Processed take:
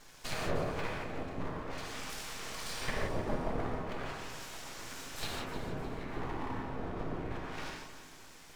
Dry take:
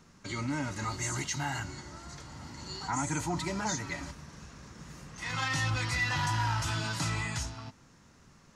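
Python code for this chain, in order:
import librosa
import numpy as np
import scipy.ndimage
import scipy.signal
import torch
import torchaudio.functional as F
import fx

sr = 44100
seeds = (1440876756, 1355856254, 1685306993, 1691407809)

y = scipy.signal.sosfilt(scipy.signal.butter(4, 130.0, 'highpass', fs=sr, output='sos'), x)
y = fx.low_shelf(y, sr, hz=230.0, db=-10.0)
y = fx.env_lowpass_down(y, sr, base_hz=350.0, full_db=-32.5)
y = fx.whisperise(y, sr, seeds[0])
y = np.abs(y)
y = fx.echo_feedback(y, sr, ms=307, feedback_pct=44, wet_db=-12.5)
y = fx.rev_gated(y, sr, seeds[1], gate_ms=200, shape='flat', drr_db=-1.5)
y = y * 10.0 ** (7.0 / 20.0)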